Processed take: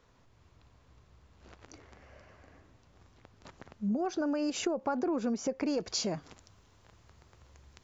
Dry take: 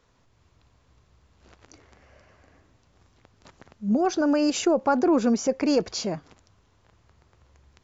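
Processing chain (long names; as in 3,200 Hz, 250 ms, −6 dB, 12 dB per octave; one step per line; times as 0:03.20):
high-shelf EQ 4,100 Hz −4 dB, from 0:05.78 +5 dB
downward compressor 6 to 1, threshold −29 dBFS, peak gain reduction 12 dB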